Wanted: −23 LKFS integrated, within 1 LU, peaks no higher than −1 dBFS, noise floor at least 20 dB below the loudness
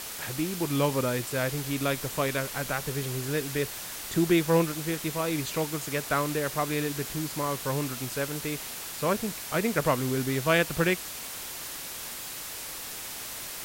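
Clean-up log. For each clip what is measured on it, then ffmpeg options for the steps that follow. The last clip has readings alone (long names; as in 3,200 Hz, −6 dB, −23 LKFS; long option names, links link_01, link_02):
background noise floor −39 dBFS; target noise floor −49 dBFS; integrated loudness −29.0 LKFS; sample peak −10.0 dBFS; target loudness −23.0 LKFS
→ -af "afftdn=noise_reduction=10:noise_floor=-39"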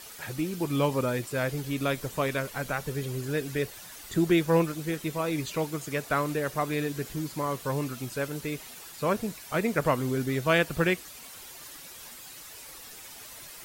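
background noise floor −46 dBFS; target noise floor −50 dBFS
→ -af "afftdn=noise_reduction=6:noise_floor=-46"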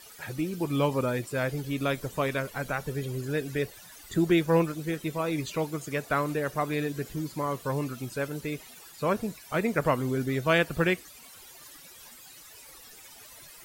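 background noise floor −50 dBFS; integrated loudness −29.5 LKFS; sample peak −11.0 dBFS; target loudness −23.0 LKFS
→ -af "volume=6.5dB"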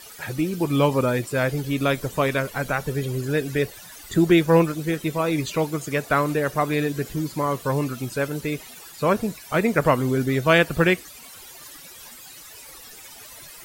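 integrated loudness −23.0 LKFS; sample peak −4.5 dBFS; background noise floor −43 dBFS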